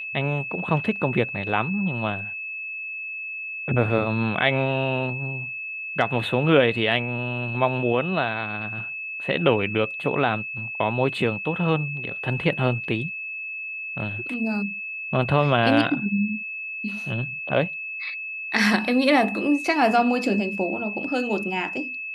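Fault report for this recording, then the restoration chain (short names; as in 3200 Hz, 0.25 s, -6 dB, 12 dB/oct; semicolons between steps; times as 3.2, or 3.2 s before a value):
tone 2600 Hz -30 dBFS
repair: notch 2600 Hz, Q 30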